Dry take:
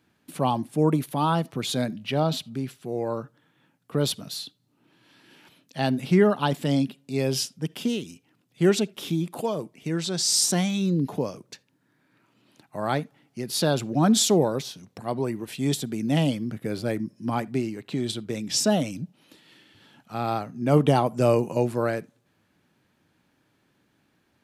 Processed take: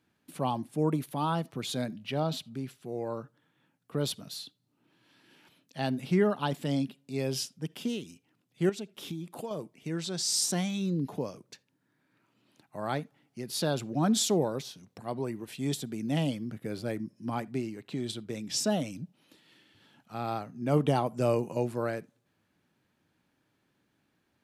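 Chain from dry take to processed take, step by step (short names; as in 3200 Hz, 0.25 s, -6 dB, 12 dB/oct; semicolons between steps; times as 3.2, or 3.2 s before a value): 8.69–9.51 compressor 6:1, threshold -28 dBFS, peak gain reduction 11.5 dB; gain -6.5 dB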